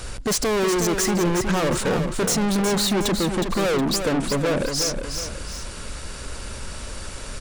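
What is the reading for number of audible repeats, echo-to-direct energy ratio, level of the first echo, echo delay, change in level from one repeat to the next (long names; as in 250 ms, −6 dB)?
2, −6.5 dB, −7.0 dB, 365 ms, −7.5 dB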